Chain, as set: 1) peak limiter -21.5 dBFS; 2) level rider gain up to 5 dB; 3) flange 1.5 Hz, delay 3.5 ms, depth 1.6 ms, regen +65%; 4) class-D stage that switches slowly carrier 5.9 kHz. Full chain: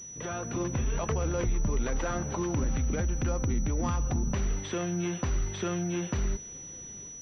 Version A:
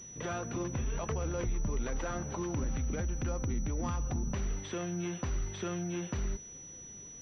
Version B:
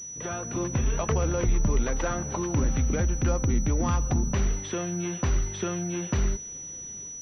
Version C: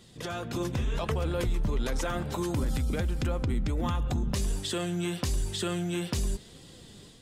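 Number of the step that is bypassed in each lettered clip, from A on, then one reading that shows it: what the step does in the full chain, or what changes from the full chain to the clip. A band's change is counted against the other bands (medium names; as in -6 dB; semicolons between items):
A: 2, momentary loudness spread change -2 LU; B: 1, mean gain reduction 2.0 dB; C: 4, 4 kHz band +8.0 dB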